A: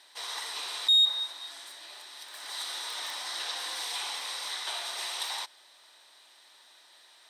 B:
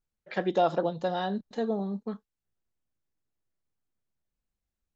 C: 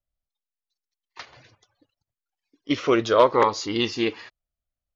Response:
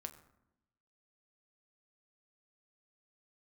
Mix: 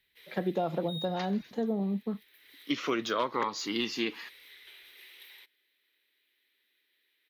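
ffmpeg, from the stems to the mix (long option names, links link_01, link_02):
-filter_complex "[0:a]firequalizer=gain_entry='entry(440,0);entry(680,-23);entry(2100,3);entry(4800,-14);entry(8100,-21);entry(13000,9)':delay=0.05:min_phase=1,equalizer=frequency=1100:width_type=o:width=0.39:gain=-4.5,volume=-11.5dB[link_01];[1:a]highpass=46,lowshelf=frequency=470:gain=9,volume=-5dB[link_02];[2:a]highpass=frequency=180:width=0.5412,highpass=frequency=180:width=1.3066,deesser=0.65,equalizer=frequency=530:width=0.96:gain=-9.5,volume=-0.5dB,asplit=2[link_03][link_04];[link_04]apad=whole_len=326243[link_05];[link_01][link_05]sidechaincompress=threshold=-29dB:ratio=8:attack=16:release=172[link_06];[link_06][link_02][link_03]amix=inputs=3:normalize=0,equalizer=frequency=5500:width_type=o:width=0.41:gain=-2.5,acrossover=split=180[link_07][link_08];[link_08]acompressor=threshold=-29dB:ratio=2.5[link_09];[link_07][link_09]amix=inputs=2:normalize=0"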